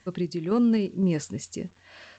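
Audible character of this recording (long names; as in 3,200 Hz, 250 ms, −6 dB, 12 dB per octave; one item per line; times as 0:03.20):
a quantiser's noise floor 10 bits, dither none
sample-and-hold tremolo 3.9 Hz
G.722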